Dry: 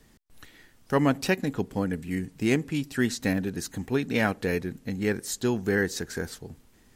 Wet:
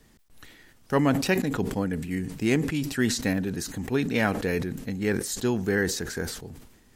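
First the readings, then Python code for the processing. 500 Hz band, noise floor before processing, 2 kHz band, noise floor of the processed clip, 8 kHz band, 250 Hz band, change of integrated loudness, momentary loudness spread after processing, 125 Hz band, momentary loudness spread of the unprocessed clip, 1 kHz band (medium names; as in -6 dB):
+0.5 dB, -59 dBFS, +0.5 dB, -58 dBFS, +3.0 dB, +1.0 dB, +1.0 dB, 8 LU, +1.5 dB, 9 LU, +0.5 dB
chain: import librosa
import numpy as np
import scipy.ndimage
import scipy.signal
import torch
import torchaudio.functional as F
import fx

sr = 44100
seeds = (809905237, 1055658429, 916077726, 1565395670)

y = fx.sustainer(x, sr, db_per_s=65.0)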